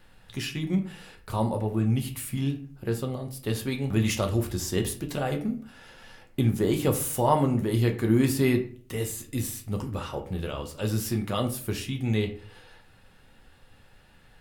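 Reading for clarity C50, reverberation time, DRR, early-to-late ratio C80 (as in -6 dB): 11.5 dB, 0.45 s, 3.5 dB, 16.0 dB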